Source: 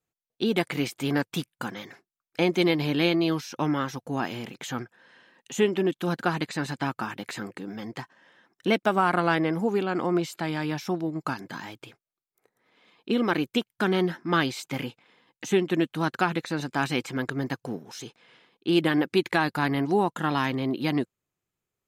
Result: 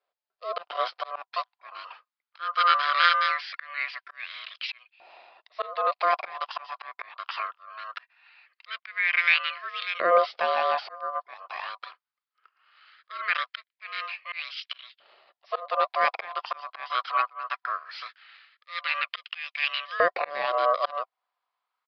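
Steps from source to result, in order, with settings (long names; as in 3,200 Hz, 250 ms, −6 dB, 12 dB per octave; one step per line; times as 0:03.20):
low-shelf EQ 79 Hz −10.5 dB
volume swells 387 ms
ring modulation 870 Hz
auto-filter high-pass saw up 0.2 Hz 570–2,900 Hz
downsampling to 11,025 Hz
level +5 dB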